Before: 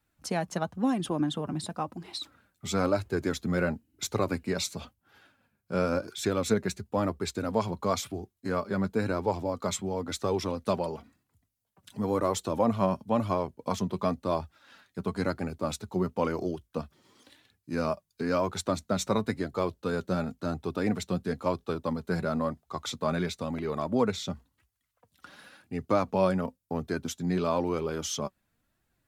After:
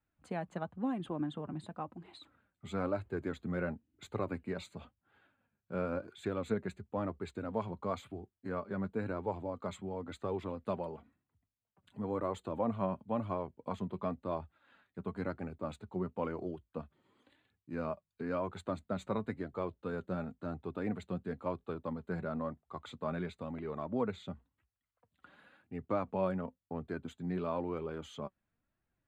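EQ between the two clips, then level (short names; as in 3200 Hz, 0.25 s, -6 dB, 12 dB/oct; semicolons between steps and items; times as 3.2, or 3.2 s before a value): running mean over 8 samples; -8.0 dB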